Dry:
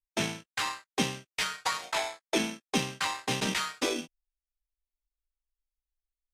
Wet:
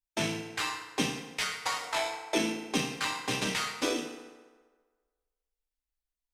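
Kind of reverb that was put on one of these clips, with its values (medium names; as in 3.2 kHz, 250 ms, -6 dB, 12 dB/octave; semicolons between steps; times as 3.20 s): FDN reverb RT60 1.5 s, low-frequency decay 0.75×, high-frequency decay 0.65×, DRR 3.5 dB; trim -2 dB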